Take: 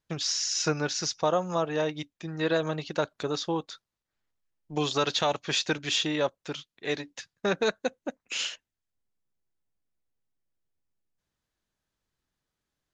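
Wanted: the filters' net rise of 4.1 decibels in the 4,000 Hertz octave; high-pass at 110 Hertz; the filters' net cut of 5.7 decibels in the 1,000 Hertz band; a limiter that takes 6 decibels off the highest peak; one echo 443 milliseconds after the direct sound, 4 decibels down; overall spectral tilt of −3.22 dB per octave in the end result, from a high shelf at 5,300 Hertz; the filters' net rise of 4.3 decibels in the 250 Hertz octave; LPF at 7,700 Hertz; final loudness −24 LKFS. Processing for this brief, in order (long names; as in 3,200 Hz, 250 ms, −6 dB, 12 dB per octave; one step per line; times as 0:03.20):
high-pass filter 110 Hz
low-pass filter 7,700 Hz
parametric band 250 Hz +7 dB
parametric band 1,000 Hz −9 dB
parametric band 4,000 Hz +3.5 dB
high-shelf EQ 5,300 Hz +5.5 dB
brickwall limiter −16.5 dBFS
single-tap delay 443 ms −4 dB
level +3.5 dB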